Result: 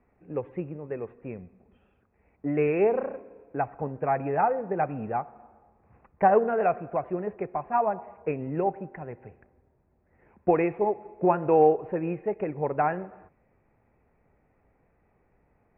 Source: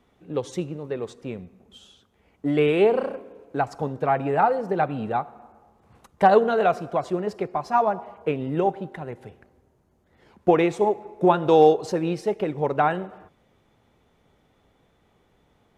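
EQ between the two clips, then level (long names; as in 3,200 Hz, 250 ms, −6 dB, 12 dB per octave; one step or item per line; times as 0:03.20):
Chebyshev low-pass with heavy ripple 2,600 Hz, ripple 3 dB
low-shelf EQ 85 Hz +8 dB
−3.5 dB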